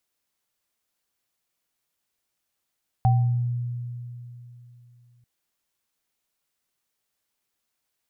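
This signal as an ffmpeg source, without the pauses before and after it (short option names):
-f lavfi -i "aevalsrc='0.178*pow(10,-3*t/3.16)*sin(2*PI*121*t)+0.1*pow(10,-3*t/0.49)*sin(2*PI*772*t)':d=2.19:s=44100"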